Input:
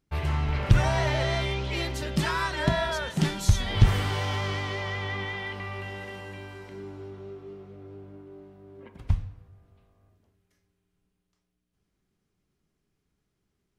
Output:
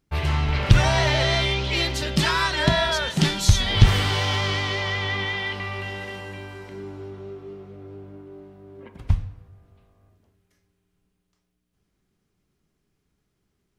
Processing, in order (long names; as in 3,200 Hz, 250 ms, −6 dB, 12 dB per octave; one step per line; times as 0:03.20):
dynamic equaliser 4,000 Hz, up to +7 dB, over −47 dBFS, Q 0.77
level +4 dB